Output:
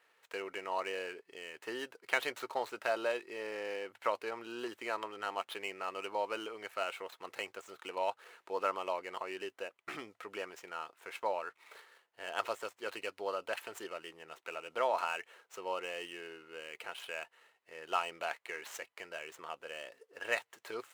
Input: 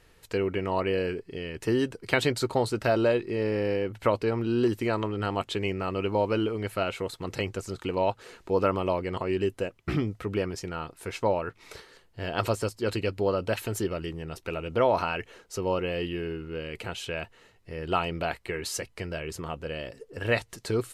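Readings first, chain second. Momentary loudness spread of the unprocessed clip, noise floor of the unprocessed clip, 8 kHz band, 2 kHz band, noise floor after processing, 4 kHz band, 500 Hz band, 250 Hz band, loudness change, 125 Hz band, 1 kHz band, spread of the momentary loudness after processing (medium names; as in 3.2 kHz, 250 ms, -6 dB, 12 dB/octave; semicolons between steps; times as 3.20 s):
11 LU, -61 dBFS, -11.0 dB, -5.0 dB, -79 dBFS, -7.5 dB, -12.0 dB, -20.0 dB, -10.0 dB, under -30 dB, -6.0 dB, 12 LU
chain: median filter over 9 samples; high-pass 750 Hz 12 dB/octave; trim -4 dB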